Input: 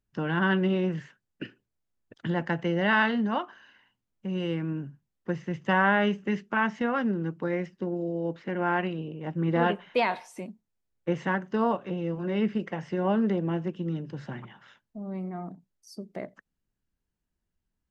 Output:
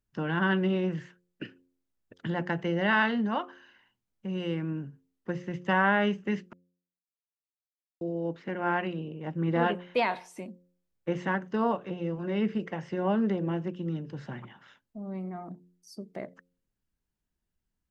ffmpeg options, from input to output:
ffmpeg -i in.wav -filter_complex "[0:a]asplit=3[link_01][link_02][link_03];[link_01]atrim=end=6.53,asetpts=PTS-STARTPTS,afade=type=out:start_time=6.526:duration=0.004:curve=hsin[link_04];[link_02]atrim=start=6.53:end=8.01,asetpts=PTS-STARTPTS,volume=0[link_05];[link_03]atrim=start=8.01,asetpts=PTS-STARTPTS,afade=type=in:duration=0.004:curve=hsin[link_06];[link_04][link_05][link_06]concat=n=3:v=0:a=1,bandreject=frequency=88.95:width_type=h:width=4,bandreject=frequency=177.9:width_type=h:width=4,bandreject=frequency=266.85:width_type=h:width=4,bandreject=frequency=355.8:width_type=h:width=4,bandreject=frequency=444.75:width_type=h:width=4,bandreject=frequency=533.7:width_type=h:width=4,volume=-1.5dB" out.wav

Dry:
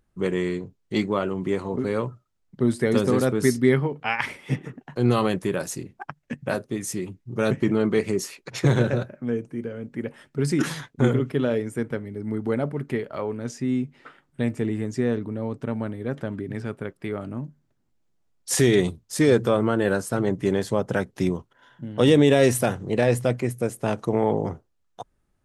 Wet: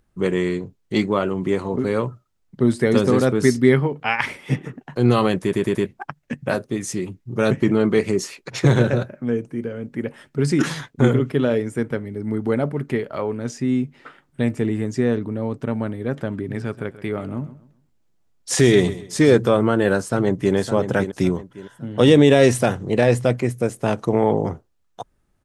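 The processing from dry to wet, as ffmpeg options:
ffmpeg -i in.wav -filter_complex "[0:a]asettb=1/sr,asplit=3[link_01][link_02][link_03];[link_01]atrim=end=16.294[link_04];[link_02]atrim=start=16.29:end=19.37,asetpts=PTS-STARTPTS,afade=type=in:duration=0.004:curve=qsin,afade=type=out:start_time=3.076:duration=0.004:curve=qsin,aecho=1:1:131|262|393:0.168|0.052|0.0161,atrim=end_sample=135828[link_05];[link_03]atrim=start=19.366[link_06];[link_04][link_05]acrossfade=duration=0.004:curve1=hsin:curve2=qsin[link_07];[link_07][link_06]acrossfade=duration=0.004:curve1=qsin:curve2=hsin,asplit=2[link_08][link_09];[link_09]afade=type=in:start_time=20:duration=0.01,afade=type=out:start_time=20.55:duration=0.01,aecho=0:1:560|1120|1680|2240:0.334965|0.117238|0.0410333|0.0143616[link_10];[link_08][link_10]amix=inputs=2:normalize=0,asplit=5[link_11][link_12][link_13][link_14][link_15];[link_11]atrim=end=5.532[link_16];[link_12]atrim=start=5.418:end=5.532[link_17];[link_13]atrim=start=5.418:end=5.532[link_18];[link_14]atrim=start=5.418:end=5.532[link_19];[link_15]atrim=start=5.858[link_20];[link_16][link_17]acrossfade=duration=0.004:curve1=hsin:curve2=hsin[link_21];[link_21][link_18]acrossfade=duration=0.004:curve1=hsin:curve2=hsin[link_22];[link_22][link_19]acrossfade=duration=0.004:curve1=hsin:curve2=hsin[link_23];[link_23][link_20]acrossfade=duration=0.004:curve1=hsin:curve2=hsin,acrossover=split=9400[link_24][link_25];[link_25]acompressor=threshold=-57dB:ratio=4:attack=1:release=60[link_26];[link_24][link_26]amix=inputs=2:normalize=0,volume=4dB" out.wav

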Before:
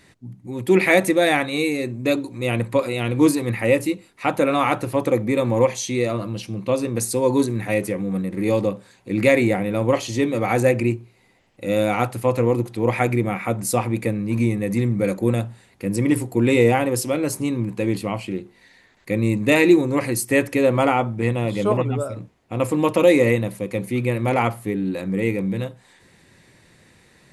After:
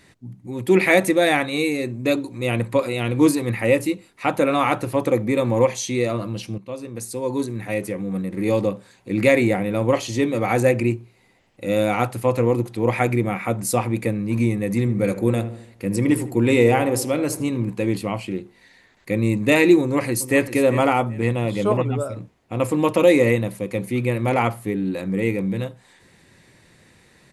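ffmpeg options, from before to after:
ffmpeg -i in.wav -filter_complex "[0:a]asettb=1/sr,asplit=3[link_01][link_02][link_03];[link_01]atrim=end=14.794[link_04];[link_02]atrim=start=14.79:end=17.7,asetpts=PTS-STARTPTS,afade=type=in:duration=0.004:curve=qsin,afade=type=out:start_time=2.906:duration=0.004:curve=qsin,asplit=2[link_05][link_06];[link_06]adelay=79,lowpass=frequency=1600:poles=1,volume=-12dB,asplit=2[link_07][link_08];[link_08]adelay=79,lowpass=frequency=1600:poles=1,volume=0.52,asplit=2[link_09][link_10];[link_10]adelay=79,lowpass=frequency=1600:poles=1,volume=0.52,asplit=2[link_11][link_12];[link_12]adelay=79,lowpass=frequency=1600:poles=1,volume=0.52,asplit=2[link_13][link_14];[link_14]adelay=79,lowpass=frequency=1600:poles=1,volume=0.52[link_15];[link_05][link_07][link_09][link_11][link_13][link_15]amix=inputs=6:normalize=0,atrim=end_sample=128331[link_16];[link_03]atrim=start=17.696[link_17];[link_04][link_16]acrossfade=duration=0.004:curve1=hsin:curve2=qsin[link_18];[link_18][link_17]acrossfade=duration=0.004:curve1=qsin:curve2=hsin,asplit=2[link_19][link_20];[link_20]afade=type=in:start_time=19.81:duration=0.01,afade=type=out:start_time=20.54:duration=0.01,aecho=0:1:390|780:0.237137|0.0474275[link_21];[link_19][link_21]amix=inputs=2:normalize=0,asplit=2[link_22][link_23];[link_22]atrim=end=6.58,asetpts=PTS-STARTPTS,afade=type=out:start_time=6.576:duration=0.004:curve=hsin:silence=0.223872[link_24];[link_23]atrim=start=6.58,asetpts=PTS-STARTPTS,afade=type=in:duration=2.01:silence=0.223872[link_25];[link_24][link_25]concat=n=2:v=0:a=1" out.wav

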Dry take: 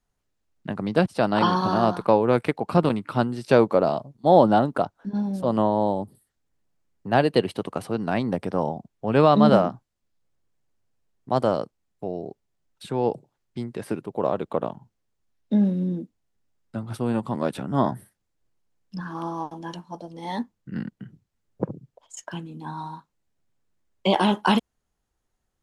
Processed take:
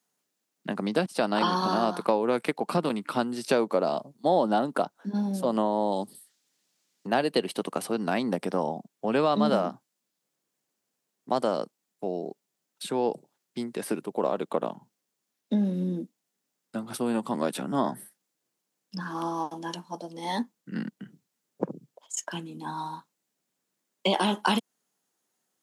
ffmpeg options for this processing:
ffmpeg -i in.wav -filter_complex "[0:a]asettb=1/sr,asplit=3[link_01][link_02][link_03];[link_01]atrim=end=5.924[link_04];[link_02]atrim=start=5.92:end=7.07,asetpts=PTS-STARTPTS,afade=type=in:duration=0.004:curve=qsin,afade=type=out:start_time=1.146:duration=0.004:curve=qsin,equalizer=frequency=4400:width_type=o:width=2.4:gain=12[link_05];[link_03]atrim=start=7.066[link_06];[link_04][link_05]acrossfade=duration=0.004:curve1=hsin:curve2=qsin[link_07];[link_07][link_06]acrossfade=duration=0.004:curve1=qsin:curve2=hsin,highshelf=frequency=4200:gain=10,acompressor=threshold=-22dB:ratio=2.5,highpass=frequency=180:width=0.5412,highpass=frequency=180:width=1.3066" out.wav

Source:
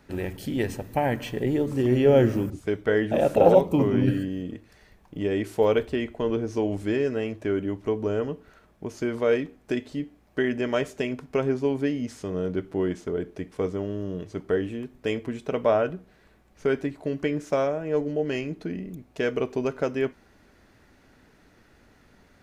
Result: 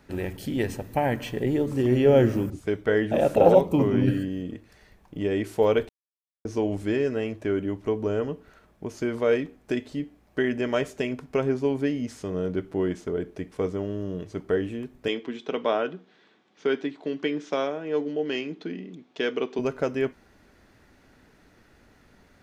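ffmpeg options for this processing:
ffmpeg -i in.wav -filter_complex "[0:a]asettb=1/sr,asplit=3[link_01][link_02][link_03];[link_01]atrim=end=15.084[link_04];[link_02]atrim=start=15.08:end=19.59,asetpts=PTS-STARTPTS,afade=type=in:duration=0.004:curve=qsin,afade=type=out:start_time=4.506:duration=0.004:curve=qsin,highpass=frequency=190:width=0.5412,highpass=frequency=190:width=1.3066,equalizer=frequency=210:width_type=q:width=4:gain=-3,equalizer=frequency=600:width_type=q:width=4:gain=-6,equalizer=frequency=3400:width_type=q:width=4:gain=9,lowpass=frequency=6200:width=0.5412,lowpass=frequency=6200:width=1.3066[link_05];[link_03]atrim=start=19.586[link_06];[link_04][link_05]acrossfade=duration=0.004:curve1=hsin:curve2=qsin[link_07];[link_07][link_06]acrossfade=duration=0.004:curve1=qsin:curve2=hsin,asplit=3[link_08][link_09][link_10];[link_08]atrim=end=5.89,asetpts=PTS-STARTPTS,afade=type=out:start_time=5.886:duration=0.004:curve=hsin[link_11];[link_09]atrim=start=5.89:end=6.45,asetpts=PTS-STARTPTS,volume=0[link_12];[link_10]atrim=start=6.45,asetpts=PTS-STARTPTS,afade=type=in:duration=0.004:curve=hsin[link_13];[link_11][link_12][link_13]concat=n=3:v=0:a=1" out.wav

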